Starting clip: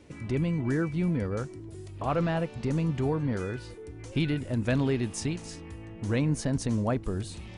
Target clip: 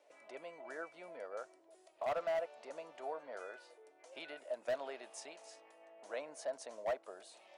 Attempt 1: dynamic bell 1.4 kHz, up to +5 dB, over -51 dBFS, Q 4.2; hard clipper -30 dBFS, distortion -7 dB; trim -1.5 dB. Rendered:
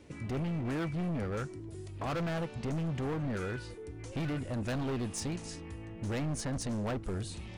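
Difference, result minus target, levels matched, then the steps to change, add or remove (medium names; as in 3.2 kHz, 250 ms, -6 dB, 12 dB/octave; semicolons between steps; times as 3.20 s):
500 Hz band -5.5 dB
add after dynamic bell: ladder high-pass 590 Hz, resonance 75%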